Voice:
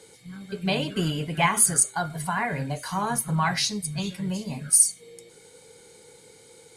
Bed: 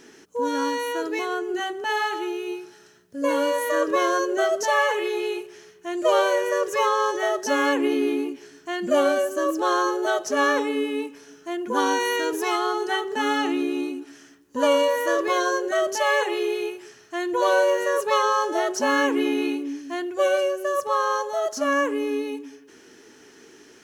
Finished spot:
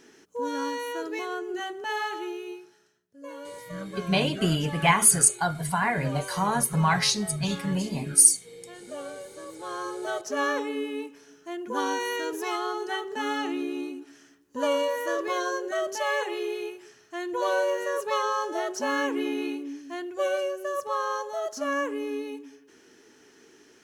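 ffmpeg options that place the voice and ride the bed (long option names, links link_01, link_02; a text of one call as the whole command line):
ffmpeg -i stem1.wav -i stem2.wav -filter_complex "[0:a]adelay=3450,volume=1.5dB[link_01];[1:a]volume=7dB,afade=type=out:start_time=2.29:duration=0.73:silence=0.223872,afade=type=in:start_time=9.54:duration=0.77:silence=0.237137[link_02];[link_01][link_02]amix=inputs=2:normalize=0" out.wav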